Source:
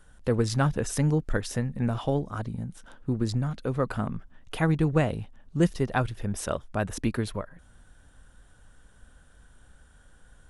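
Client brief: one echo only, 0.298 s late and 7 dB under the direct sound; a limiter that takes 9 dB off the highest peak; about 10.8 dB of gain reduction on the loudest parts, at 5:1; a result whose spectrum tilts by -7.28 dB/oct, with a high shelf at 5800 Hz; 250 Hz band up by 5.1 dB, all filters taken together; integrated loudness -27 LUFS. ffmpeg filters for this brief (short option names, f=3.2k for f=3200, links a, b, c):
-af "equalizer=f=250:t=o:g=7,highshelf=f=5.8k:g=-5,acompressor=threshold=-28dB:ratio=5,alimiter=level_in=1dB:limit=-24dB:level=0:latency=1,volume=-1dB,aecho=1:1:298:0.447,volume=9dB"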